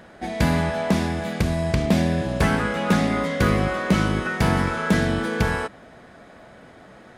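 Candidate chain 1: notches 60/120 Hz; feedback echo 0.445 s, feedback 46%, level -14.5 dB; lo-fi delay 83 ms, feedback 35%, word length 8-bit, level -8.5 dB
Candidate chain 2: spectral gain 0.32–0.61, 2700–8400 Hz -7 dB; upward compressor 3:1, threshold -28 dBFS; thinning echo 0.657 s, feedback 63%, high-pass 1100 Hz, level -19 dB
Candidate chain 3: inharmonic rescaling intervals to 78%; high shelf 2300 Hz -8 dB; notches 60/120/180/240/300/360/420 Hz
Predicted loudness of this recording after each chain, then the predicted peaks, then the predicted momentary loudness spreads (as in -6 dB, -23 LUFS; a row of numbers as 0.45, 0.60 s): -22.0, -22.5, -25.5 LUFS; -6.5, -7.5, -9.5 dBFS; 12, 16, 4 LU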